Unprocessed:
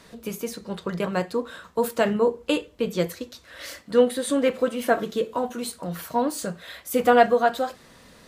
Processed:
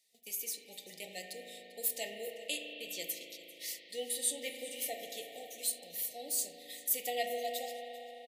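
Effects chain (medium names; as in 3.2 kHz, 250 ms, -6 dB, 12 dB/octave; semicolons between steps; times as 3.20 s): gate -40 dBFS, range -16 dB; differentiator; hum notches 60/120/180/240 Hz; FFT band-reject 860–1800 Hz; on a send: delay 394 ms -19 dB; on the sum: spring tank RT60 3.9 s, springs 37 ms, chirp 45 ms, DRR 2.5 dB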